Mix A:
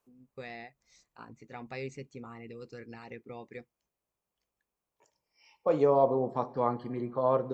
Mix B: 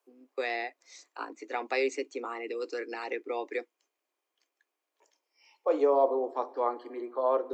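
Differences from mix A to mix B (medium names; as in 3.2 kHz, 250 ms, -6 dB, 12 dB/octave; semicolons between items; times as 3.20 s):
first voice +11.5 dB; master: add steep high-pass 280 Hz 72 dB/octave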